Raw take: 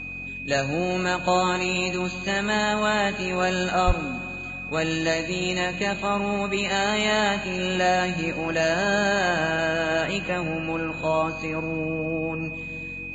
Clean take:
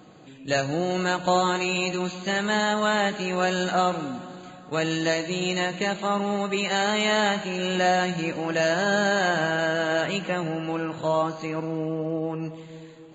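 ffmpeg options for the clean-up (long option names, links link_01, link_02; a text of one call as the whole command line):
ffmpeg -i in.wav -filter_complex "[0:a]bandreject=frequency=45.2:width_type=h:width=4,bandreject=frequency=90.4:width_type=h:width=4,bandreject=frequency=135.6:width_type=h:width=4,bandreject=frequency=180.8:width_type=h:width=4,bandreject=frequency=226:width_type=h:width=4,bandreject=frequency=271.2:width_type=h:width=4,bandreject=frequency=2500:width=30,asplit=3[link_01][link_02][link_03];[link_01]afade=type=out:start_time=3.86:duration=0.02[link_04];[link_02]highpass=frequency=140:width=0.5412,highpass=frequency=140:width=1.3066,afade=type=in:start_time=3.86:duration=0.02,afade=type=out:start_time=3.98:duration=0.02[link_05];[link_03]afade=type=in:start_time=3.98:duration=0.02[link_06];[link_04][link_05][link_06]amix=inputs=3:normalize=0" out.wav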